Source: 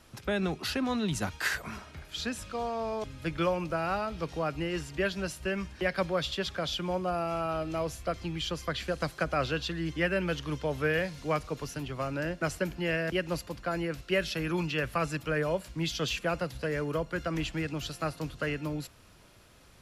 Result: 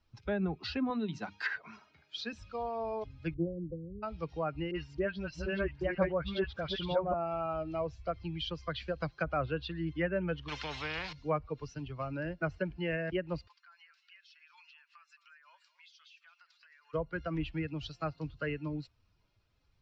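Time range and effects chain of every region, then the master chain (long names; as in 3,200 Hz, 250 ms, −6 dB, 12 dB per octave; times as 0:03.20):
0:00.90–0:02.33: high-pass filter 180 Hz + mains-hum notches 50/100/150/200/250/300/350 Hz
0:03.34–0:04.03: linear-phase brick-wall band-stop 540–12,000 Hz + highs frequency-modulated by the lows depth 0.14 ms
0:04.71–0:07.14: delay that plays each chunk backwards 619 ms, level −1.5 dB + all-pass dispersion highs, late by 45 ms, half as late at 1,500 Hz
0:10.48–0:11.13: parametric band 5,000 Hz −8.5 dB 1.1 octaves + every bin compressed towards the loudest bin 4 to 1
0:13.48–0:16.94: high-pass filter 1,100 Hz 24 dB per octave + downward compressor 12 to 1, threshold −45 dBFS + single-tap delay 220 ms −11.5 dB
whole clip: spectral dynamics exaggerated over time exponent 1.5; treble cut that deepens with the level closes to 1,400 Hz, closed at −27.5 dBFS; inverse Chebyshev low-pass filter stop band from 11,000 Hz, stop band 50 dB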